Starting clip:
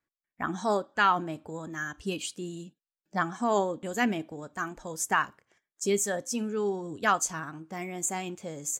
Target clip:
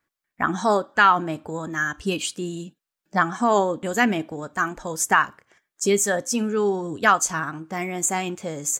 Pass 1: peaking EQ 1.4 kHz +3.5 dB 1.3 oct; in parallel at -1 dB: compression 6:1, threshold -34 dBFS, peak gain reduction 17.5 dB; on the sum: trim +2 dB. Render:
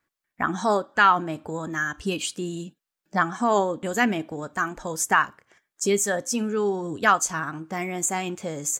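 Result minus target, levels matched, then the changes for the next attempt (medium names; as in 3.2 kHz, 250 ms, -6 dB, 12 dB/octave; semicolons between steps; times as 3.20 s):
compression: peak gain reduction +8 dB
change: compression 6:1, threshold -24.5 dBFS, peak gain reduction 9.5 dB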